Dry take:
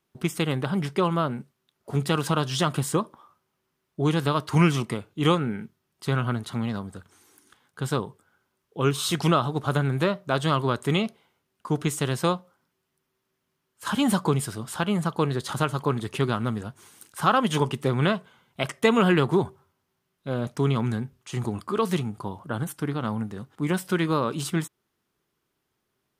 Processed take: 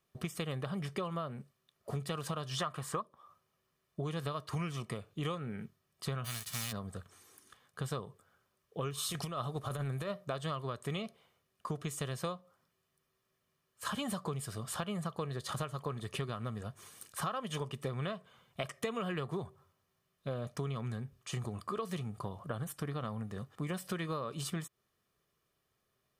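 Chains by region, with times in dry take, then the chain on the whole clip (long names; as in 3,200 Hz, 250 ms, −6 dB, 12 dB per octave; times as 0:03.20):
0:02.57–0:03.02: parametric band 1,200 Hz +11 dB 1.8 octaves + one half of a high-frequency compander decoder only
0:06.24–0:06.71: spectral envelope flattened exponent 0.3 + parametric band 510 Hz −12.5 dB 2.8 octaves
0:08.97–0:10.25: parametric band 11,000 Hz +6 dB 0.96 octaves + compressor whose output falls as the input rises −24 dBFS, ratio −0.5
whole clip: comb filter 1.7 ms, depth 47%; downward compressor 6 to 1, threshold −32 dBFS; level −3 dB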